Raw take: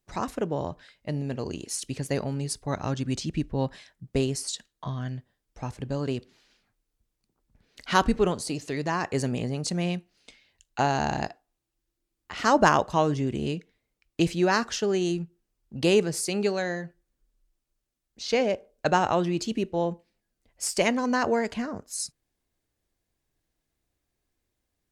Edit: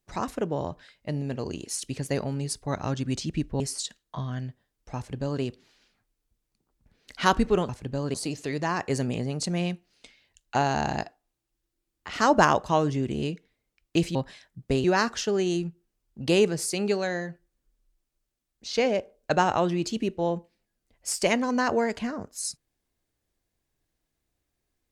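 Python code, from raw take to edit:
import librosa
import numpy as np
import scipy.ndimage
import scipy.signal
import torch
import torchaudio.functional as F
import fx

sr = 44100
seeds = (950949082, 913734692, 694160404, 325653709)

y = fx.edit(x, sr, fx.move(start_s=3.6, length_s=0.69, to_s=14.39),
    fx.duplicate(start_s=5.66, length_s=0.45, to_s=8.38), tone=tone)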